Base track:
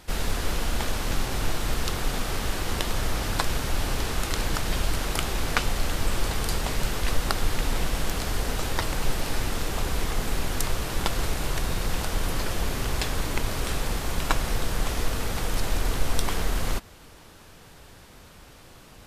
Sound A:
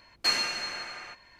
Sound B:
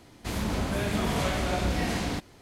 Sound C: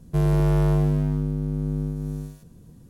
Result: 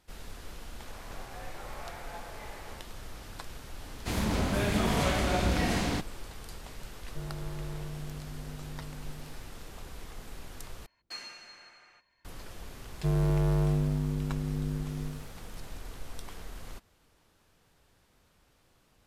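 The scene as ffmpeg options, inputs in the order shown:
-filter_complex "[2:a]asplit=2[a][b];[3:a]asplit=2[c][d];[0:a]volume=-17.5dB[e];[a]highpass=f=370:t=q:w=0.5412,highpass=f=370:t=q:w=1.307,lowpass=f=2.2k:t=q:w=0.5176,lowpass=f=2.2k:t=q:w=0.7071,lowpass=f=2.2k:t=q:w=1.932,afreqshift=130[f];[c]asoftclip=type=tanh:threshold=-22.5dB[g];[e]asplit=2[h][i];[h]atrim=end=10.864[j];[1:a]atrim=end=1.39,asetpts=PTS-STARTPTS,volume=-16.5dB[k];[i]atrim=start=12.246[l];[f]atrim=end=2.41,asetpts=PTS-STARTPTS,volume=-13.5dB,afade=t=in:d=0.004:c=hsin,afade=t=out:st=2.406:d=0.004:c=hsin,adelay=610[m];[b]atrim=end=2.41,asetpts=PTS-STARTPTS,afade=t=in:d=0.004:c=hsin,afade=t=out:st=2.406:d=0.004:c=hsin,adelay=168021S[n];[g]atrim=end=2.89,asetpts=PTS-STARTPTS,volume=-14.5dB,afade=t=in:d=0.004:c=hsin,afade=t=out:st=2.886:d=0.004:c=hsin,adelay=7020[o];[d]atrim=end=2.89,asetpts=PTS-STARTPTS,volume=-6.5dB,afade=t=in:d=0.004:c=hsin,afade=t=out:st=2.886:d=0.004:c=hsin,adelay=12900[p];[j][k]acrossfade=d=0.004:c1=hsin:c2=hsin[q];[q][l]acrossfade=d=0.004:c1=hsin:c2=hsin[r];[r][m][n][o][p]amix=inputs=5:normalize=0"

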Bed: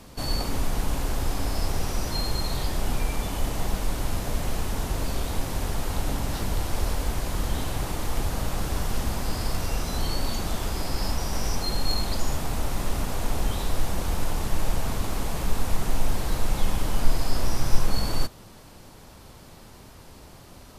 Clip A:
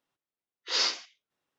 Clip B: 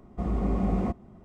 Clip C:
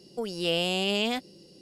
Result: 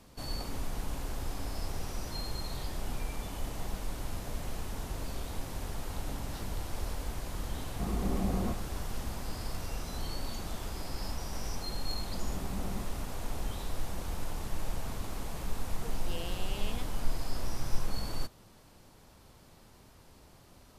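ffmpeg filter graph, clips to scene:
-filter_complex "[2:a]asplit=2[a][b];[0:a]volume=-10dB[c];[a]atrim=end=1.24,asetpts=PTS-STARTPTS,volume=-5.5dB,afade=t=in:d=0.004:c=hsin,afade=t=out:st=1.236:d=0.004:c=hsin,adelay=7610[d];[b]atrim=end=1.24,asetpts=PTS-STARTPTS,volume=-14.5dB,afade=t=in:d=0.004:c=hsin,afade=t=out:st=1.236:d=0.004:c=hsin,adelay=11920[e];[3:a]atrim=end=1.61,asetpts=PTS-STARTPTS,volume=-16.5dB,afade=t=in:d=0.004:c=hsin,afade=t=out:st=1.606:d=0.004:c=hsin,adelay=15660[f];[c][d][e][f]amix=inputs=4:normalize=0"

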